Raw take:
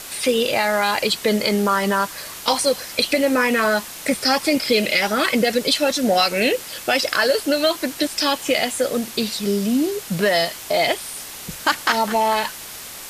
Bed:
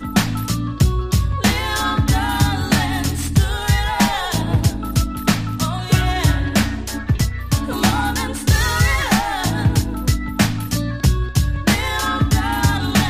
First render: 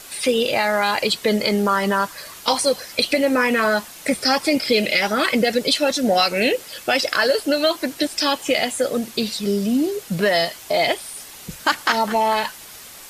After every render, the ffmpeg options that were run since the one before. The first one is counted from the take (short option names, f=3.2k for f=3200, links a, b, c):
-af "afftdn=nr=6:nf=-36"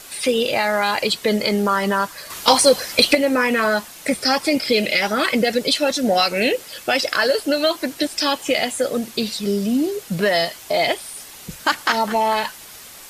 -filter_complex "[0:a]asettb=1/sr,asplit=3[a][b][c];[a]atrim=end=2.304[d];[b]atrim=start=2.3:end=3.15,asetpts=PTS-STARTPTS,afade=t=in:d=0.004:c=qsin,afade=t=out:st=0.846:d=0.004:c=qsin,acontrast=66[e];[c]atrim=start=3.146[f];[d][e]acrossfade=d=0.004:c1=hsin:c2=qsin[g];[g][f]acrossfade=d=0.004:c1=qsin:c2=hsin"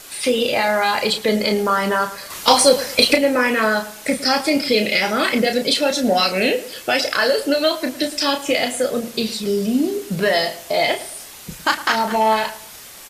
-filter_complex "[0:a]asplit=2[a][b];[b]adelay=32,volume=-7dB[c];[a][c]amix=inputs=2:normalize=0,asplit=2[d][e];[e]adelay=109,lowpass=f=2k:p=1,volume=-14.5dB,asplit=2[f][g];[g]adelay=109,lowpass=f=2k:p=1,volume=0.35,asplit=2[h][i];[i]adelay=109,lowpass=f=2k:p=1,volume=0.35[j];[d][f][h][j]amix=inputs=4:normalize=0"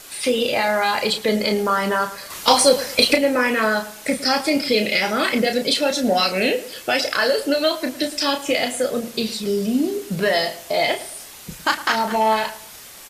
-af "volume=-1.5dB"